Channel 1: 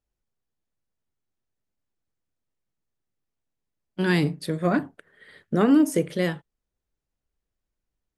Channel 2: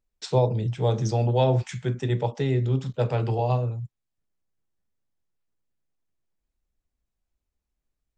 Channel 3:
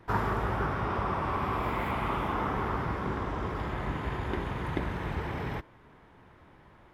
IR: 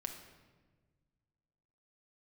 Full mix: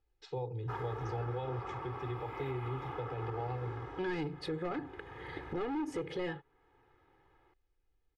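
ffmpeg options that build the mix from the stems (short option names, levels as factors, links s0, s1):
-filter_complex "[0:a]asoftclip=type=hard:threshold=0.1,volume=1.19,asplit=2[s0][s1];[1:a]volume=0.211[s2];[2:a]highpass=f=150:p=1,highshelf=f=6400:g=-9,adelay=600,volume=0.237[s3];[s1]apad=whole_len=332308[s4];[s3][s4]sidechaincompress=threshold=0.0251:ratio=5:attack=16:release=539[s5];[s0][s2]amix=inputs=2:normalize=0,lowpass=3200,alimiter=level_in=1.41:limit=0.0631:level=0:latency=1:release=305,volume=0.708,volume=1[s6];[s5][s6]amix=inputs=2:normalize=0,aecho=1:1:2.4:0.83,alimiter=level_in=1.78:limit=0.0631:level=0:latency=1:release=119,volume=0.562"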